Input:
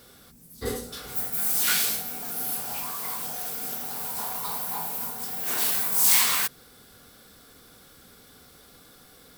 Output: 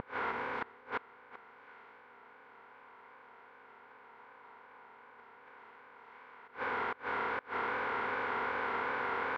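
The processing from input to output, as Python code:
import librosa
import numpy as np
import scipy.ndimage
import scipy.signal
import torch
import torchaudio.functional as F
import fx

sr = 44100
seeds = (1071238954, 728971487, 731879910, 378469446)

y = fx.bin_compress(x, sr, power=0.2)
y = fx.low_shelf(y, sr, hz=360.0, db=-10.0)
y = fx.echo_feedback(y, sr, ms=114, feedback_pct=59, wet_db=-20.5)
y = fx.vibrato(y, sr, rate_hz=2.6, depth_cents=78.0)
y = fx.cabinet(y, sr, low_hz=110.0, low_slope=12, high_hz=2000.0, hz=(170.0, 580.0, 950.0), db=(-6, 3, 7))
y = fx.gate_flip(y, sr, shuts_db=-18.0, range_db=-25)
y = F.gain(torch.from_numpy(y), -5.5).numpy()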